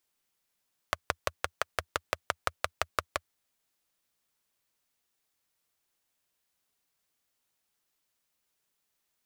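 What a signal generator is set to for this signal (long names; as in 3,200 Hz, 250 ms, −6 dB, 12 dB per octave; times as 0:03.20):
pulse-train model of a single-cylinder engine, steady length 2.38 s, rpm 700, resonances 83/620/1,200 Hz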